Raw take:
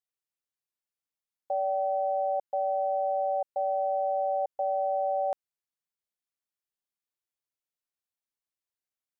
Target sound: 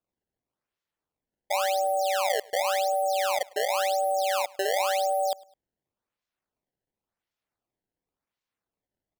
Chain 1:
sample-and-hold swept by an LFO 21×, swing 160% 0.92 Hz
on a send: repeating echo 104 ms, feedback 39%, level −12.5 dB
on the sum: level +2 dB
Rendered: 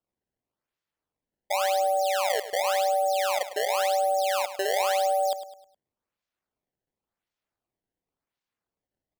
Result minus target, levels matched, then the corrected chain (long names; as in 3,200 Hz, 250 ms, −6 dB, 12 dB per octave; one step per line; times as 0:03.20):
echo-to-direct +12 dB
sample-and-hold swept by an LFO 21×, swing 160% 0.92 Hz
on a send: repeating echo 104 ms, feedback 39%, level −24.5 dB
on the sum: level +2 dB